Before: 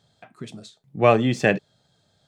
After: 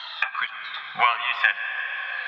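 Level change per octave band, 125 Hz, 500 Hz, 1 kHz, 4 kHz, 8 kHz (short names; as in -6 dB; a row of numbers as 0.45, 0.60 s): under -30 dB, -18.5 dB, +2.0 dB, +7.5 dB, under -20 dB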